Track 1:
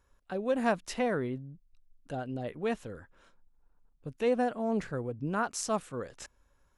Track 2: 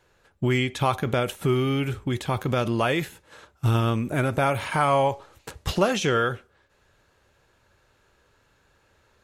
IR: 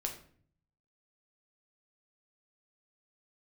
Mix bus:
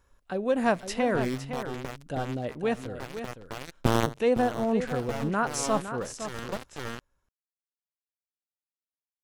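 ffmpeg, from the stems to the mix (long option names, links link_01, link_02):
-filter_complex "[0:a]acontrast=58,volume=-3dB,asplit=4[link_01][link_02][link_03][link_04];[link_02]volume=-21.5dB[link_05];[link_03]volume=-9.5dB[link_06];[1:a]aeval=exprs='0.376*(cos(1*acos(clip(val(0)/0.376,-1,1)))-cos(1*PI/2))+0.0376*(cos(6*acos(clip(val(0)/0.376,-1,1)))-cos(6*PI/2))+0.106*(cos(7*acos(clip(val(0)/0.376,-1,1)))-cos(7*PI/2))':channel_layout=same,acrusher=bits=2:mix=0:aa=0.5,tiltshelf=frequency=800:gain=4,adelay=200,volume=-0.5dB,asplit=2[link_07][link_08];[link_08]volume=-14dB[link_09];[link_04]apad=whole_len=415920[link_10];[link_07][link_10]sidechaincompress=threshold=-52dB:ratio=10:attack=42:release=703[link_11];[2:a]atrim=start_sample=2205[link_12];[link_05][link_12]afir=irnorm=-1:irlink=0[link_13];[link_06][link_09]amix=inputs=2:normalize=0,aecho=0:1:510:1[link_14];[link_01][link_11][link_13][link_14]amix=inputs=4:normalize=0"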